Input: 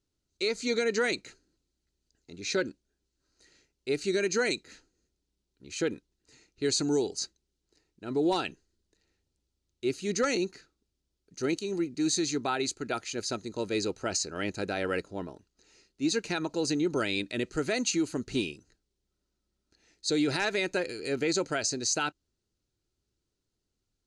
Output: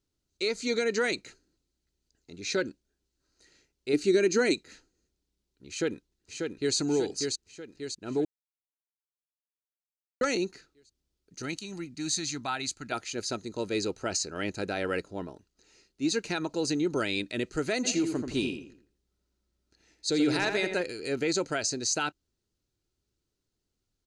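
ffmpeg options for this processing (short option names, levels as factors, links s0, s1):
-filter_complex "[0:a]asettb=1/sr,asplit=3[s0][s1][s2];[s0]atrim=end=3.934[s3];[s1]atrim=start=3.93:end=4.54,asetpts=PTS-STARTPTS,afade=t=in:d=0.004:c=qsin,afade=t=out:st=0.606:d=0.004:c=qsin,equalizer=f=300:t=o:w=0.77:g=10.5[s4];[s2]atrim=start=4.536[s5];[s3][s4]acrossfade=d=0.004:c1=hsin:c2=qsin[s6];[s6][s5]acrossfade=d=0.004:c1=qsin:c2=hsin,asplit=2[s7][s8];[s8]afade=t=in:st=5.69:d=0.01,afade=t=out:st=6.76:d=0.01,aecho=0:1:590|1180|1770|2360|2950|3540|4130:0.630957|0.347027|0.190865|0.104976|0.0577365|0.0317551|0.0174653[s9];[s7][s9]amix=inputs=2:normalize=0,asettb=1/sr,asplit=3[s10][s11][s12];[s10]atrim=end=11.424[s13];[s11]atrim=start=11.42:end=12.92,asetpts=PTS-STARTPTS,afade=t=in:d=0.004:c=qsin,afade=t=out:st=1.496:d=0.004:c=qsin,equalizer=f=410:w=1.6:g=-13.5[s14];[s12]atrim=start=12.916[s15];[s13][s14]acrossfade=d=0.004:c1=hsin:c2=qsin[s16];[s16][s15]acrossfade=d=0.004:c1=qsin:c2=hsin,asplit=3[s17][s18][s19];[s17]afade=t=out:st=17.83:d=0.02[s20];[s18]asplit=2[s21][s22];[s22]adelay=83,lowpass=f=2200:p=1,volume=0.531,asplit=2[s23][s24];[s24]adelay=83,lowpass=f=2200:p=1,volume=0.39,asplit=2[s25][s26];[s26]adelay=83,lowpass=f=2200:p=1,volume=0.39,asplit=2[s27][s28];[s28]adelay=83,lowpass=f=2200:p=1,volume=0.39,asplit=2[s29][s30];[s30]adelay=83,lowpass=f=2200:p=1,volume=0.39[s31];[s21][s23][s25][s27][s29][s31]amix=inputs=6:normalize=0,afade=t=in:st=17.83:d=0.02,afade=t=out:st=20.81:d=0.02[s32];[s19]afade=t=in:st=20.81:d=0.02[s33];[s20][s32][s33]amix=inputs=3:normalize=0,asplit=3[s34][s35][s36];[s34]atrim=end=8.25,asetpts=PTS-STARTPTS,afade=t=out:st=8.246:d=0.004:c=hsin[s37];[s35]atrim=start=8.25:end=10.21,asetpts=PTS-STARTPTS,volume=0[s38];[s36]atrim=start=10.21,asetpts=PTS-STARTPTS,afade=t=in:d=0.004:c=hsin[s39];[s37][s38][s39]concat=n=3:v=0:a=1"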